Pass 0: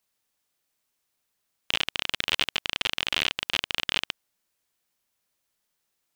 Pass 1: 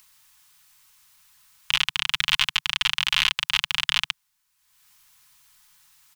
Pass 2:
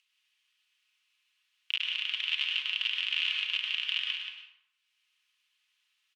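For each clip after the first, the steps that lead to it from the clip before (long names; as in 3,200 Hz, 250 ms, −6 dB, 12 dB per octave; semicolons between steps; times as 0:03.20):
Chebyshev band-stop filter 150–950 Hz, order 3; comb filter 4.7 ms, depth 34%; upward compression, threshold −49 dBFS; level +5 dB
resonant band-pass 2,800 Hz, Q 3.9; single-tap delay 179 ms −7 dB; dense smooth reverb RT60 0.82 s, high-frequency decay 0.6×, pre-delay 90 ms, DRR 0.5 dB; level −6.5 dB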